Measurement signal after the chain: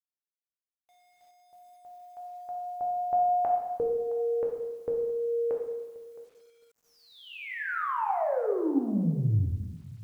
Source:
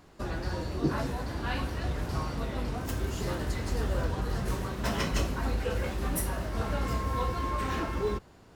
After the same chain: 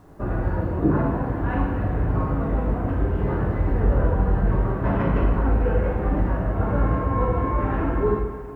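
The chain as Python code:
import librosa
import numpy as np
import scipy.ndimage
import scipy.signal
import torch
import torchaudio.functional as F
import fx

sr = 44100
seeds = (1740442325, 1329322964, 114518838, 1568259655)

y = scipy.signal.sosfilt(scipy.signal.bessel(4, 1200.0, 'lowpass', norm='mag', fs=sr, output='sos'), x)
y = y + 10.0 ** (-19.5 / 20.0) * np.pad(y, (int(666 * sr / 1000.0), 0))[:len(y)]
y = fx.rev_plate(y, sr, seeds[0], rt60_s=1.2, hf_ratio=1.0, predelay_ms=0, drr_db=-1.0)
y = fx.quant_dither(y, sr, seeds[1], bits=12, dither='none')
y = y * librosa.db_to_amplitude(6.0)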